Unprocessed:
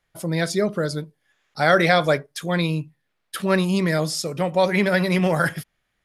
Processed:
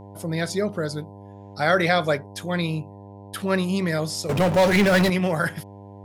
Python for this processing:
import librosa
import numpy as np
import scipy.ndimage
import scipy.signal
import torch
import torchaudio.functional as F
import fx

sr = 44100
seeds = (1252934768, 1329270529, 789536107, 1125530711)

y = fx.dmg_buzz(x, sr, base_hz=100.0, harmonics=10, level_db=-39.0, tilt_db=-4, odd_only=False)
y = fx.power_curve(y, sr, exponent=0.5, at=(4.29, 5.1))
y = y * librosa.db_to_amplitude(-3.0)